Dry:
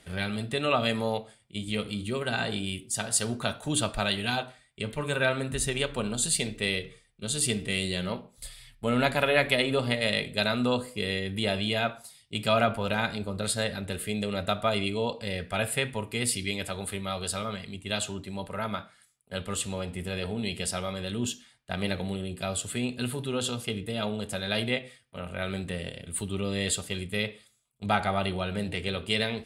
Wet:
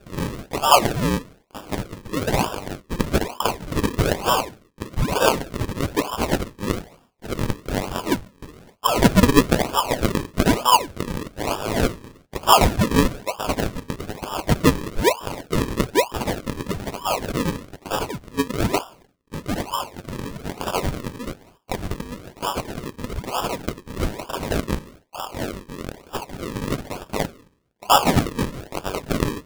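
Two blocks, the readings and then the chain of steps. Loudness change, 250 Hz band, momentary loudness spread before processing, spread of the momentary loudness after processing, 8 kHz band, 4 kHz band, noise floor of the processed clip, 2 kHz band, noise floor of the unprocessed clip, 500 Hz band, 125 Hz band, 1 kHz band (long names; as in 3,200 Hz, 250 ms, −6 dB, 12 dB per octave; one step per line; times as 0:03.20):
+6.5 dB, +7.5 dB, 9 LU, 16 LU, +1.5 dB, +3.0 dB, −57 dBFS, +1.5 dB, −62 dBFS, +5.5 dB, +7.0 dB, +11.5 dB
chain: high-pass with resonance 1,000 Hz, resonance Q 9
sample-and-hold swept by an LFO 42×, swing 100% 1.1 Hz
level +5.5 dB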